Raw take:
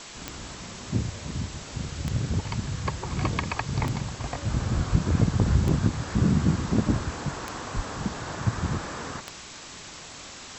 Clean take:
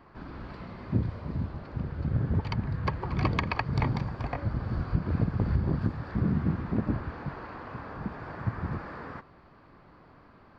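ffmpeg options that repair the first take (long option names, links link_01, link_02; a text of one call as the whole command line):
ffmpeg -i in.wav -filter_complex "[0:a]adeclick=threshold=4,asplit=3[link_01][link_02][link_03];[link_01]afade=type=out:start_time=7.75:duration=0.02[link_04];[link_02]highpass=frequency=140:width=0.5412,highpass=frequency=140:width=1.3066,afade=type=in:start_time=7.75:duration=0.02,afade=type=out:start_time=7.87:duration=0.02[link_05];[link_03]afade=type=in:start_time=7.87:duration=0.02[link_06];[link_04][link_05][link_06]amix=inputs=3:normalize=0,afwtdn=0.011,asetnsamples=nb_out_samples=441:pad=0,asendcmd='4.48 volume volume -5dB',volume=0dB" out.wav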